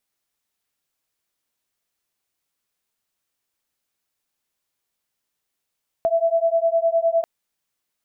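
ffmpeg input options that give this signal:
-f lavfi -i "aevalsrc='0.106*(sin(2*PI*660*t)+sin(2*PI*669.8*t))':d=1.19:s=44100"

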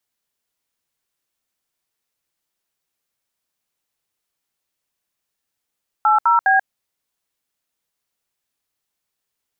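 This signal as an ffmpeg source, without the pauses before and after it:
-f lavfi -i "aevalsrc='0.2*clip(min(mod(t,0.205),0.136-mod(t,0.205))/0.002,0,1)*(eq(floor(t/0.205),0)*(sin(2*PI*852*mod(t,0.205))+sin(2*PI*1336*mod(t,0.205)))+eq(floor(t/0.205),1)*(sin(2*PI*941*mod(t,0.205))+sin(2*PI*1336*mod(t,0.205)))+eq(floor(t/0.205),2)*(sin(2*PI*770*mod(t,0.205))+sin(2*PI*1633*mod(t,0.205))))':d=0.615:s=44100"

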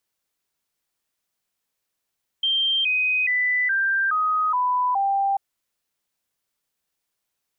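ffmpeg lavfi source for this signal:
-f lavfi -i "aevalsrc='0.119*clip(min(mod(t,0.42),0.42-mod(t,0.42))/0.005,0,1)*sin(2*PI*3160*pow(2,-floor(t/0.42)/3)*mod(t,0.42))':d=2.94:s=44100"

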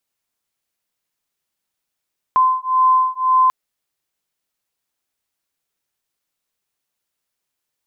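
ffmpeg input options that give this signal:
-f lavfi -i "aevalsrc='0.168*(sin(2*PI*1030*t)+sin(2*PI*1031.9*t))':d=1.14:s=44100"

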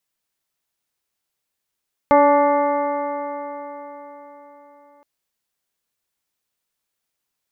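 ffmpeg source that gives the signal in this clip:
-f lavfi -i "aevalsrc='0.126*pow(10,-3*t/4.28)*sin(2*PI*286.27*t)+0.251*pow(10,-3*t/4.28)*sin(2*PI*574.17*t)+0.224*pow(10,-3*t/4.28)*sin(2*PI*865.3*t)+0.106*pow(10,-3*t/4.28)*sin(2*PI*1161.26*t)+0.0251*pow(10,-3*t/4.28)*sin(2*PI*1463.57*t)+0.0224*pow(10,-3*t/4.28)*sin(2*PI*1773.72*t)+0.0398*pow(10,-3*t/4.28)*sin(2*PI*2093.12*t)':d=2.92:s=44100"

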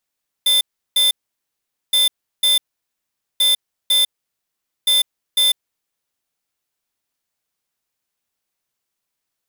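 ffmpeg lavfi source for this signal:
-f lavfi -i "aevalsrc='0.188*(2*lt(mod(3550*t,1),0.5)-1)*clip(min(mod(mod(t,1.47),0.5),0.15-mod(mod(t,1.47),0.5))/0.005,0,1)*lt(mod(t,1.47),1)':d=5.88:s=44100"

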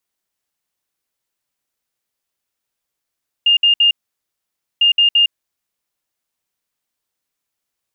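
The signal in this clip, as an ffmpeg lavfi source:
-f lavfi -i "aevalsrc='0.376*sin(2*PI*2820*t)*clip(min(mod(mod(t,1.35),0.17),0.11-mod(mod(t,1.35),0.17))/0.005,0,1)*lt(mod(t,1.35),0.51)':d=2.7:s=44100"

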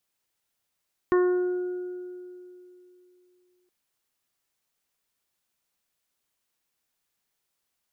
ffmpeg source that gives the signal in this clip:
-f lavfi -i "aevalsrc='0.141*pow(10,-3*t/3.01)*sin(2*PI*361*t)+0.0168*pow(10,-3*t/1.81)*sin(2*PI*722*t)+0.0501*pow(10,-3*t/0.67)*sin(2*PI*1083*t)+0.0178*pow(10,-3*t/2.15)*sin(2*PI*1444*t)+0.0211*pow(10,-3*t/0.6)*sin(2*PI*1805*t)':d=2.57:s=44100"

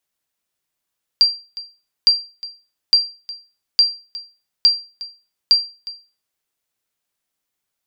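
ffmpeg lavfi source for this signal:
-f lavfi -i "aevalsrc='0.596*(sin(2*PI*4730*mod(t,0.86))*exp(-6.91*mod(t,0.86)/0.33)+0.119*sin(2*PI*4730*max(mod(t,0.86)-0.36,0))*exp(-6.91*max(mod(t,0.86)-0.36,0)/0.33))':d=5.16:s=44100"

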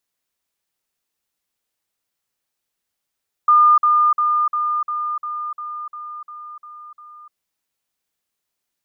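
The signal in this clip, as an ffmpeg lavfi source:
-f lavfi -i "aevalsrc='pow(10,(-8.5-3*floor(t/0.35))/20)*sin(2*PI*1210*t)*clip(min(mod(t,0.35),0.3-mod(t,0.35))/0.005,0,1)':d=3.85:s=44100"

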